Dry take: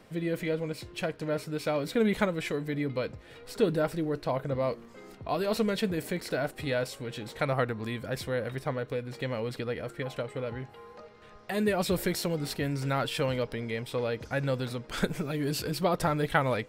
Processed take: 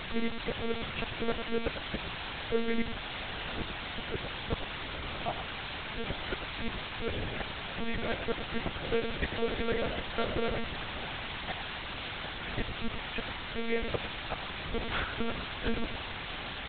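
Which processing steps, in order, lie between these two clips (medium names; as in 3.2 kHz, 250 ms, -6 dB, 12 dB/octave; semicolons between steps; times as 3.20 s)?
low-pass 3 kHz 24 dB/octave; peaking EQ 66 Hz -14 dB 0.53 oct; hum notches 60/120/180/240/300/360/420/480/540 Hz; inverted gate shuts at -23 dBFS, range -40 dB; word length cut 6-bit, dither triangular; delay 104 ms -9 dB; monotone LPC vocoder at 8 kHz 230 Hz; trim +4 dB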